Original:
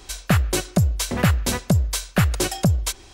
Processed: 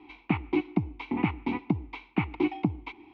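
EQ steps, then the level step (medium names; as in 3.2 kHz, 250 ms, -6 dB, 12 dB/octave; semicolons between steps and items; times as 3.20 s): vowel filter u; low-pass 3.1 kHz 24 dB/octave; +8.5 dB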